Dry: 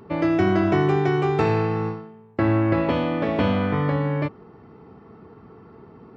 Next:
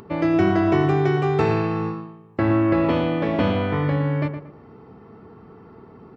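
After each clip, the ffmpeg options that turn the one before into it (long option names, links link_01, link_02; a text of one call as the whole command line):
ffmpeg -i in.wav -filter_complex "[0:a]acompressor=mode=upward:threshold=-42dB:ratio=2.5,asplit=2[link_01][link_02];[link_02]adelay=115,lowpass=frequency=2100:poles=1,volume=-8dB,asplit=2[link_03][link_04];[link_04]adelay=115,lowpass=frequency=2100:poles=1,volume=0.3,asplit=2[link_05][link_06];[link_06]adelay=115,lowpass=frequency=2100:poles=1,volume=0.3,asplit=2[link_07][link_08];[link_08]adelay=115,lowpass=frequency=2100:poles=1,volume=0.3[link_09];[link_01][link_03][link_05][link_07][link_09]amix=inputs=5:normalize=0" out.wav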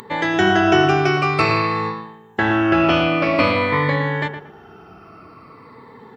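ffmpeg -i in.wav -af "afftfilt=real='re*pow(10,12/40*sin(2*PI*(1*log(max(b,1)*sr/1024/100)/log(2)-(-0.5)*(pts-256)/sr)))':imag='im*pow(10,12/40*sin(2*PI*(1*log(max(b,1)*sr/1024/100)/log(2)-(-0.5)*(pts-256)/sr)))':win_size=1024:overlap=0.75,tiltshelf=frequency=810:gain=-7.5,volume=4.5dB" out.wav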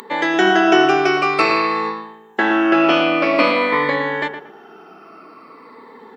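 ffmpeg -i in.wav -af "highpass=frequency=230:width=0.5412,highpass=frequency=230:width=1.3066,volume=2dB" out.wav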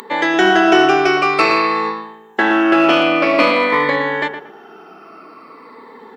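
ffmpeg -i in.wav -filter_complex "[0:a]equalizer=frequency=86:width=0.5:gain=-2.5,asplit=2[link_01][link_02];[link_02]asoftclip=type=hard:threshold=-10.5dB,volume=-6dB[link_03];[link_01][link_03]amix=inputs=2:normalize=0,volume=-1dB" out.wav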